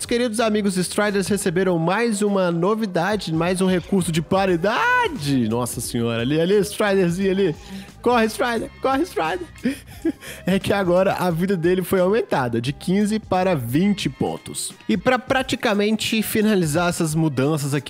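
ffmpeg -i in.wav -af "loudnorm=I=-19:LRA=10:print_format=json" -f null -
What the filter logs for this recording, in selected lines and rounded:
"input_i" : "-20.6",
"input_tp" : "-5.2",
"input_lra" : "1.5",
"input_thresh" : "-30.6",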